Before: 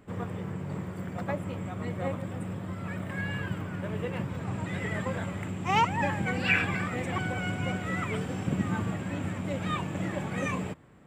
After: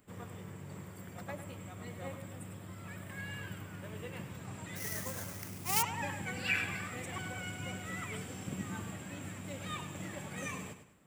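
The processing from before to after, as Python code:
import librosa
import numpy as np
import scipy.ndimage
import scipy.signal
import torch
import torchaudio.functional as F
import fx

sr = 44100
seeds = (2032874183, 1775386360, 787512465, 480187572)

y = fx.echo_feedback(x, sr, ms=101, feedback_pct=36, wet_db=-10.5)
y = fx.sample_hold(y, sr, seeds[0], rate_hz=8000.0, jitter_pct=20, at=(4.75, 5.81), fade=0.02)
y = scipy.signal.lfilter([1.0, -0.8], [1.0], y)
y = F.gain(torch.from_numpy(y), 2.0).numpy()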